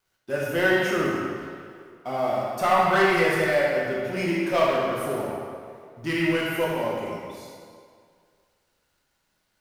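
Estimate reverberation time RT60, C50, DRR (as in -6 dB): 2.2 s, -1.0 dB, -4.5 dB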